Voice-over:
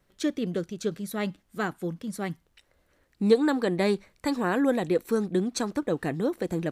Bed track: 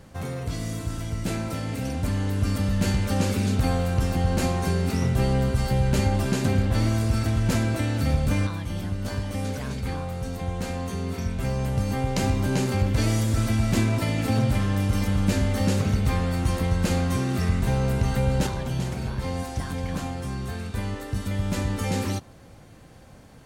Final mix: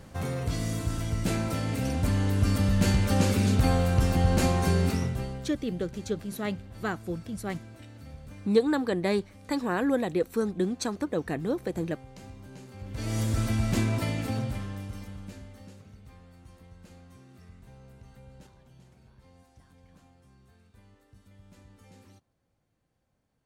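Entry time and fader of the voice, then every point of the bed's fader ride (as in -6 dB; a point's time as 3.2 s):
5.25 s, -2.0 dB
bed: 4.86 s 0 dB
5.6 s -22.5 dB
12.73 s -22.5 dB
13.21 s -4 dB
14.06 s -4 dB
15.84 s -28 dB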